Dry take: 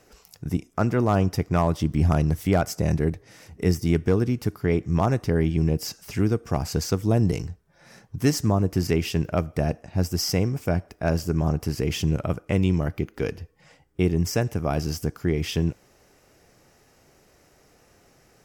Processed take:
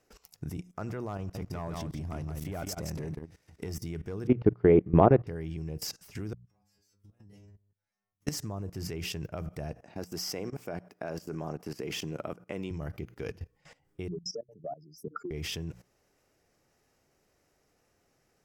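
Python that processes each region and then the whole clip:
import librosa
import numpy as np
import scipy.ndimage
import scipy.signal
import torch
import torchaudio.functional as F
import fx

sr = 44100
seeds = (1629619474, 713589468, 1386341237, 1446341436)

y = fx.chain(x, sr, fx.leveller(passes=1),
    fx.level_steps(step_db=15),
    fx.echo_single(ms=169, db=-6.0), at=(1.17, 3.77))
y = fx.chain(y, sr, fx.lowpass(hz=3200.0, slope=24),
    fx.peak_eq(hz=380.0, db=13.5, octaves=2.5),
    fx.upward_expand(threshold_db=-26.0, expansion=1.5), at=(4.27, 5.27))
y = fx.chain(y, sr, fx.auto_swell(attack_ms=253.0),
    fx.stiff_resonator(f0_hz=100.0, decay_s=0.65, stiffness=0.002),
    fx.level_steps(step_db=15), at=(6.33, 8.27))
y = fx.chain(y, sr, fx.highpass(hz=240.0, slope=12),
    fx.peak_eq(hz=9200.0, db=-4.5, octaves=2.9), at=(9.82, 12.71))
y = fx.chain(y, sr, fx.spec_expand(power=3.6),
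    fx.highpass(hz=290.0, slope=24),
    fx.band_squash(depth_pct=100), at=(14.08, 15.31))
y = fx.dynamic_eq(y, sr, hz=250.0, q=3.7, threshold_db=-37.0, ratio=4.0, max_db=-5)
y = fx.hum_notches(y, sr, base_hz=60, count=3)
y = fx.level_steps(y, sr, step_db=18)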